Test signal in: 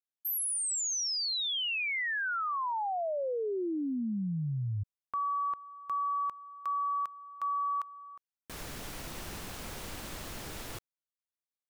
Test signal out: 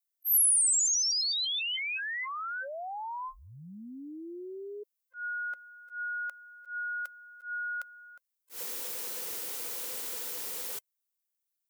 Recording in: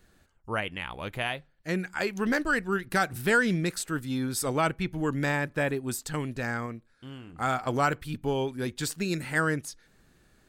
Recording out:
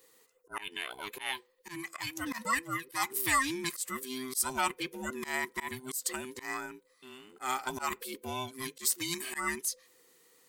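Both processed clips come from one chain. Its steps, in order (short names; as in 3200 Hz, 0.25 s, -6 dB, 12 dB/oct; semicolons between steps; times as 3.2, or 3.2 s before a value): band inversion scrambler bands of 500 Hz; RIAA curve recording; auto swell 0.12 s; gain -4.5 dB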